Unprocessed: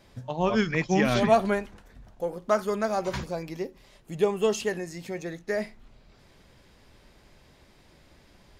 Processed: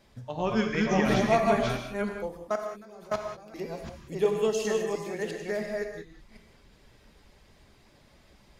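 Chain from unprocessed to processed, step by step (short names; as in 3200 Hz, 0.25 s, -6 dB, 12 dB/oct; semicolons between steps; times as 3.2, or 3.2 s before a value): reverse delay 0.354 s, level -1.5 dB; 2.37–3.54 level quantiser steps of 22 dB; reverb removal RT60 0.53 s; non-linear reverb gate 0.22 s flat, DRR 3.5 dB; gain -4 dB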